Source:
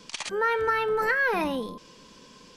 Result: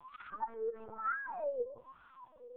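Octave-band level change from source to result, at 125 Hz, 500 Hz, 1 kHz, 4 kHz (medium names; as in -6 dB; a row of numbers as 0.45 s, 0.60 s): under -20 dB, -11.5 dB, -12.0 dB, under -30 dB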